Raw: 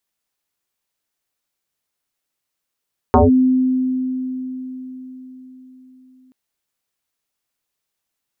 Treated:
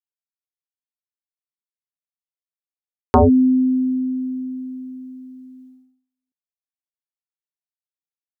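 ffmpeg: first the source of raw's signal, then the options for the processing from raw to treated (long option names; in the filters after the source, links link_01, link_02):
-f lavfi -i "aevalsrc='0.447*pow(10,-3*t/4.62)*sin(2*PI*257*t+5.4*clip(1-t/0.16,0,1)*sin(2*PI*0.64*257*t))':duration=3.18:sample_rate=44100"
-af "agate=range=-37dB:threshold=-44dB:ratio=16:detection=peak"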